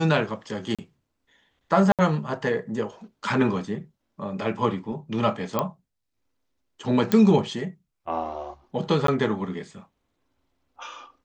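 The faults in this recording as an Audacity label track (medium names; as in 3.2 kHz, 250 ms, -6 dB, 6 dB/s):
0.750000	0.790000	dropout 36 ms
1.920000	1.990000	dropout 67 ms
5.590000	5.590000	pop -10 dBFS
7.120000	7.120000	pop -9 dBFS
9.070000	9.080000	dropout 13 ms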